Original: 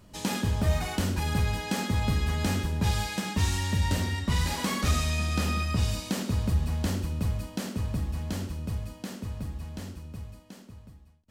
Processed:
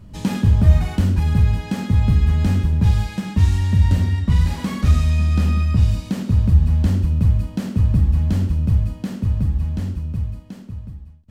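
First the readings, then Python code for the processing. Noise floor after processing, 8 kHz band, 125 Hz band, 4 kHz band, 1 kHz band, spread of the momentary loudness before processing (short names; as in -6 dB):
-40 dBFS, -5.0 dB, +12.5 dB, -2.5 dB, 0.0 dB, 12 LU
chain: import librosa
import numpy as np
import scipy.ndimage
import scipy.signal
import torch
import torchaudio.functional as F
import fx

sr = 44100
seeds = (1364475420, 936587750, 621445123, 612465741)

y = fx.bass_treble(x, sr, bass_db=13, treble_db=-5)
y = fx.rider(y, sr, range_db=4, speed_s=2.0)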